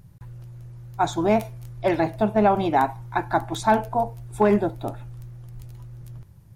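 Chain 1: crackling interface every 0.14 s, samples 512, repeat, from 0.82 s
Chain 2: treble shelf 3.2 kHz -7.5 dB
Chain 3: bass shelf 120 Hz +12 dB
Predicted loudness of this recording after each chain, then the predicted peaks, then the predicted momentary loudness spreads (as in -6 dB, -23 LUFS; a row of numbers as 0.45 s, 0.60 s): -23.0 LUFS, -23.5 LUFS, -22.0 LUFS; -8.5 dBFS, -8.5 dBFS, -6.0 dBFS; 21 LU, 21 LU, 17 LU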